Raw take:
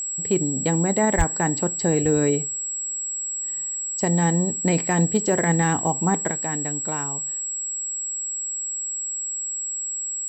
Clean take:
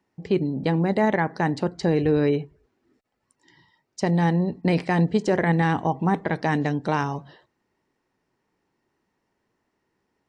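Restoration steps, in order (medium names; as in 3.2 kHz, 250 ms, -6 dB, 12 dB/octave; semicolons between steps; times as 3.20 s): clip repair -10.5 dBFS; band-stop 7.7 kHz, Q 30; 1.17–1.29 s: high-pass 140 Hz 24 dB/octave; trim 0 dB, from 6.31 s +7 dB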